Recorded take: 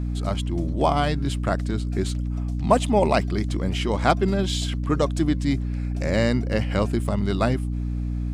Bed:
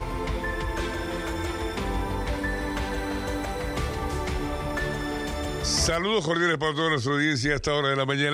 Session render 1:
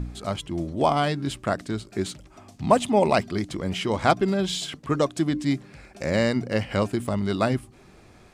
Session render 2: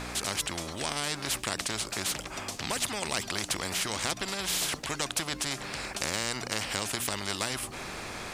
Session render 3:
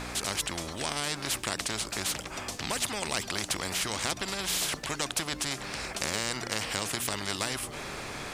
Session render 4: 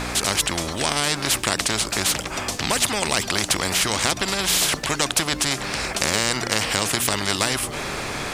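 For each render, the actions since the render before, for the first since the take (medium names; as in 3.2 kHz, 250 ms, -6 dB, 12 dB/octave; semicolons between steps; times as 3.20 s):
de-hum 60 Hz, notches 5
compression 2.5:1, threshold -24 dBFS, peak gain reduction 8.5 dB; spectrum-flattening compressor 4:1
add bed -24 dB
trim +10 dB; peak limiter -3 dBFS, peak gain reduction 1.5 dB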